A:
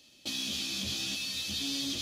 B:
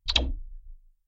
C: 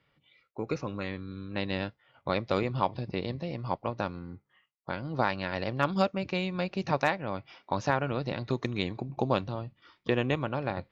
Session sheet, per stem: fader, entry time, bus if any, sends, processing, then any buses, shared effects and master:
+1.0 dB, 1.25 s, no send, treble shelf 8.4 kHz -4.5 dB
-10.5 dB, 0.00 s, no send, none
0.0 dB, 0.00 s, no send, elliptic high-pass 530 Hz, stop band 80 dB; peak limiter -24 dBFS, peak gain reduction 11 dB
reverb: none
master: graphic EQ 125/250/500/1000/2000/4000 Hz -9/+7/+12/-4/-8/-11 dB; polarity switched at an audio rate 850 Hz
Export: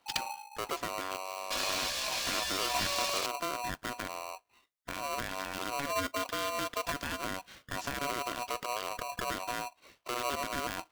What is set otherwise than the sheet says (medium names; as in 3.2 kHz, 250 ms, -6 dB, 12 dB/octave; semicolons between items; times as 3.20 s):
stem C: missing elliptic high-pass 530 Hz, stop band 80 dB; master: missing graphic EQ 125/250/500/1000/2000/4000 Hz -9/+7/+12/-4/-8/-11 dB